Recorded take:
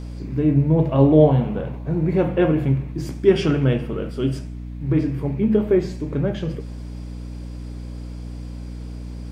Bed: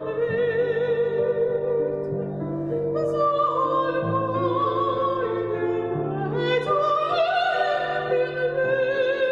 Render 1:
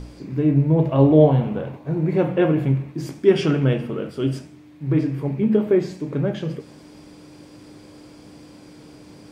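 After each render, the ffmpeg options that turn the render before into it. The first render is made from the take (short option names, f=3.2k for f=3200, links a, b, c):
-af "bandreject=f=60:t=h:w=4,bandreject=f=120:t=h:w=4,bandreject=f=180:t=h:w=4,bandreject=f=240:t=h:w=4"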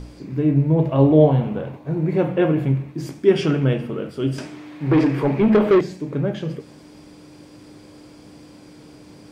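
-filter_complex "[0:a]asettb=1/sr,asplit=3[a][b][c];[a]atrim=end=4.384[d];[b]atrim=start=4.38:end=5.81,asetpts=PTS-STARTPTS,afade=t=in:d=0.004:c=qsin,afade=t=out:st=1.426:d=0.004:c=qsin,asplit=2[e][f];[f]highpass=f=720:p=1,volume=22dB,asoftclip=type=tanh:threshold=-6.5dB[g];[e][g]amix=inputs=2:normalize=0,lowpass=f=2.7k:p=1,volume=-6dB[h];[c]atrim=start=5.806[i];[d][h]acrossfade=d=0.004:c1=hsin:c2=qsin[j];[j][i]acrossfade=d=0.004:c1=qsin:c2=hsin"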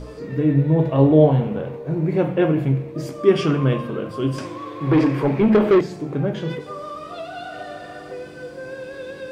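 -filter_complex "[1:a]volume=-11.5dB[a];[0:a][a]amix=inputs=2:normalize=0"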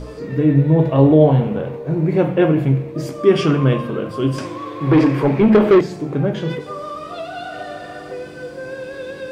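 -af "volume=3.5dB,alimiter=limit=-2dB:level=0:latency=1"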